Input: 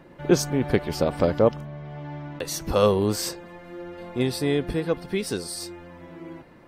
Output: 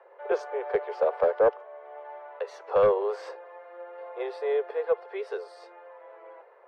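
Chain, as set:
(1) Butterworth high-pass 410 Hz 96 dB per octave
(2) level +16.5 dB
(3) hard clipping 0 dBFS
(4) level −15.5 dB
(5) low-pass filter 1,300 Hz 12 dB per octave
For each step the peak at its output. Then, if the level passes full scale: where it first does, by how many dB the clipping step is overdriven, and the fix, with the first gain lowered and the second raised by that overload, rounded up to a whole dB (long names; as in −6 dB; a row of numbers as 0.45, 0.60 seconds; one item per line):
−9.0, +7.5, 0.0, −15.5, −15.0 dBFS
step 2, 7.5 dB
step 2 +8.5 dB, step 4 −7.5 dB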